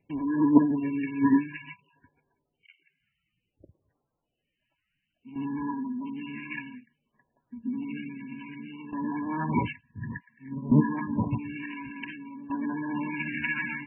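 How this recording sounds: tremolo saw down 0.56 Hz, depth 75%; a quantiser's noise floor 12-bit, dither triangular; phasing stages 2, 0.57 Hz, lowest notch 620–2700 Hz; MP3

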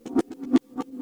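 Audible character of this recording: a quantiser's noise floor 12-bit, dither triangular; chopped level 6.6 Hz, duty 90%; a shimmering, thickened sound

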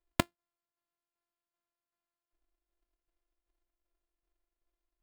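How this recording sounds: a buzz of ramps at a fixed pitch in blocks of 128 samples; tremolo saw down 2.6 Hz, depth 55%; aliases and images of a low sample rate 5900 Hz, jitter 0%

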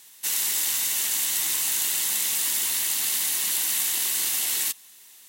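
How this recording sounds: noise floor -50 dBFS; spectral tilt +2.5 dB/oct

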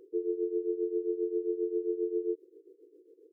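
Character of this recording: tremolo triangle 7.5 Hz, depth 85%

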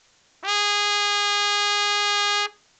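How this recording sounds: a quantiser's noise floor 10-bit, dither triangular; µ-law

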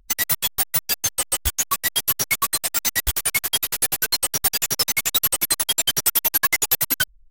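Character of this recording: noise floor -51 dBFS; spectral tilt 0.0 dB/oct

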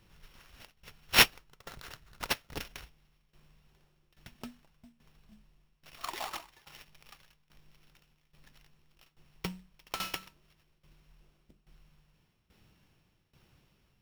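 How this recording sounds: a buzz of ramps at a fixed pitch in blocks of 8 samples; tremolo saw down 1.2 Hz, depth 85%; aliases and images of a low sample rate 8300 Hz, jitter 20%

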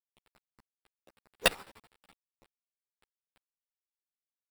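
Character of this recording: aliases and images of a low sample rate 6400 Hz, jitter 0%; chopped level 12 Hz, depth 65%, duty 40%; a quantiser's noise floor 10-bit, dither none; a shimmering, thickened sound

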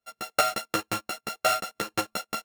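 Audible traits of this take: a buzz of ramps at a fixed pitch in blocks of 32 samples; tremolo saw up 5 Hz, depth 50%; a shimmering, thickened sound

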